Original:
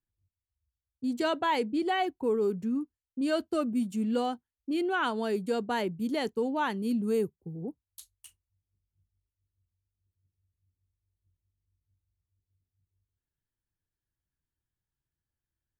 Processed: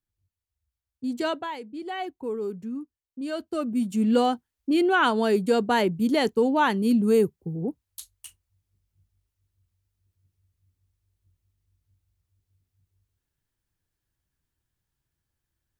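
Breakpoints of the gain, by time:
1.3 s +1.5 dB
1.6 s -10 dB
2.03 s -3 dB
3.34 s -3 dB
4.09 s +8 dB

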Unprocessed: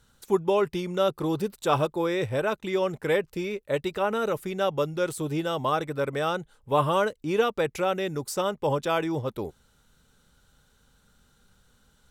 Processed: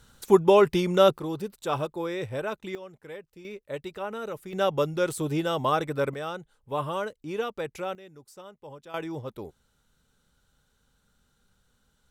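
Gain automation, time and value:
+5.5 dB
from 1.18 s -5 dB
from 2.75 s -17 dB
from 3.45 s -8 dB
from 4.53 s +1 dB
from 6.14 s -7 dB
from 7.95 s -19 dB
from 8.94 s -6.5 dB

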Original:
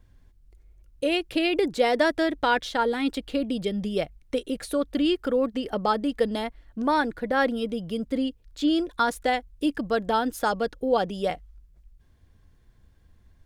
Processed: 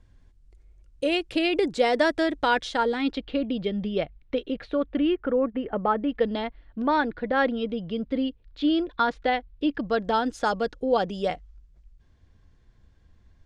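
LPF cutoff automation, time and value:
LPF 24 dB/oct
2.76 s 8900 Hz
3.29 s 3900 Hz
4.46 s 3900 Hz
5.27 s 2300 Hz
5.92 s 2300 Hz
6.32 s 4100 Hz
9.73 s 4100 Hz
10.2 s 7300 Hz

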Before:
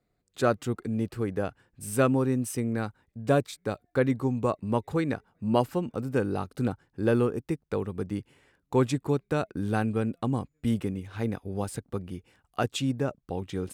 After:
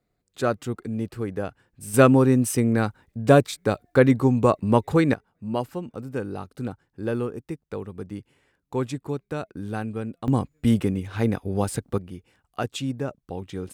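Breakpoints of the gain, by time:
+0.5 dB
from 1.94 s +8 dB
from 5.14 s -3 dB
from 10.28 s +7 dB
from 11.98 s -0.5 dB

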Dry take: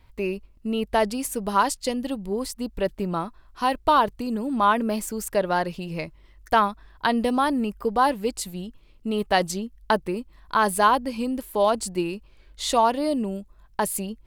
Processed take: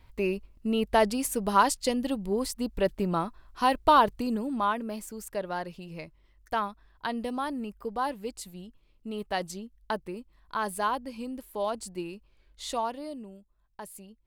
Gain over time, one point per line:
4.26 s -1 dB
4.81 s -10 dB
12.73 s -10 dB
13.37 s -18 dB

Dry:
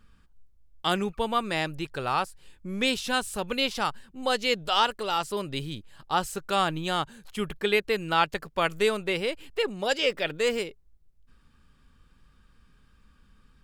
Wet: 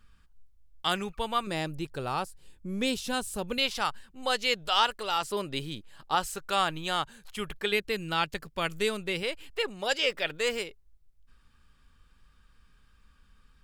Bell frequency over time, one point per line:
bell -7 dB 2.8 oct
290 Hz
from 1.47 s 1800 Hz
from 3.58 s 230 Hz
from 5.22 s 60 Hz
from 6.15 s 220 Hz
from 7.72 s 770 Hz
from 9.23 s 230 Hz

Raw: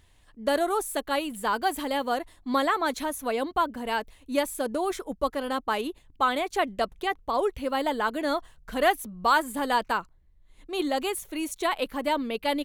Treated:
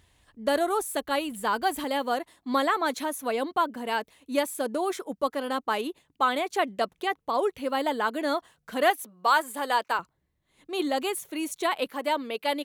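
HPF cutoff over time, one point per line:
52 Hz
from 1.84 s 170 Hz
from 8.9 s 420 Hz
from 9.99 s 130 Hz
from 11.9 s 330 Hz

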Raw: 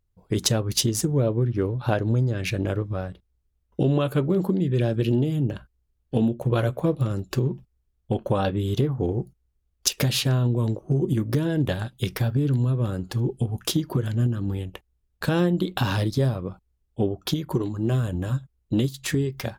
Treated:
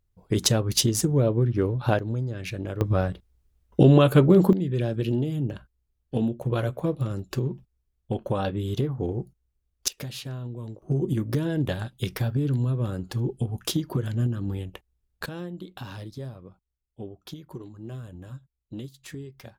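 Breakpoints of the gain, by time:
+0.5 dB
from 1.99 s -6.5 dB
from 2.81 s +6 dB
from 4.53 s -3.5 dB
from 9.88 s -13 dB
from 10.82 s -2.5 dB
from 15.26 s -14.5 dB

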